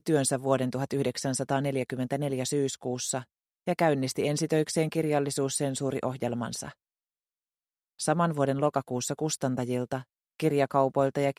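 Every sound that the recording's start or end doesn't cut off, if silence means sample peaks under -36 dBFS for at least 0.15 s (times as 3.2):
3.67–6.7
8–10.01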